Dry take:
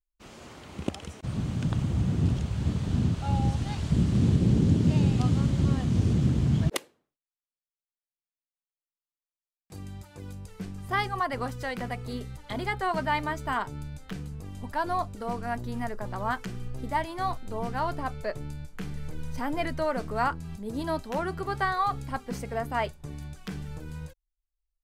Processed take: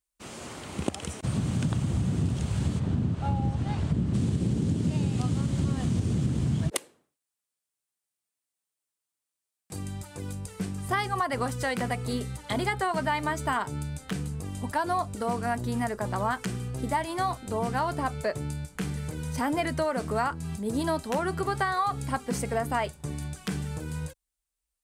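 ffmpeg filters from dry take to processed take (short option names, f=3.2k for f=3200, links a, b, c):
-filter_complex "[0:a]asplit=3[a][b][c];[a]afade=t=out:st=2.78:d=0.02[d];[b]lowpass=f=1.5k:p=1,afade=t=in:st=2.78:d=0.02,afade=t=out:st=4.13:d=0.02[e];[c]afade=t=in:st=4.13:d=0.02[f];[d][e][f]amix=inputs=3:normalize=0,highpass=69,equalizer=f=8.8k:w=1.7:g=9,acompressor=threshold=-29dB:ratio=6,volume=5.5dB"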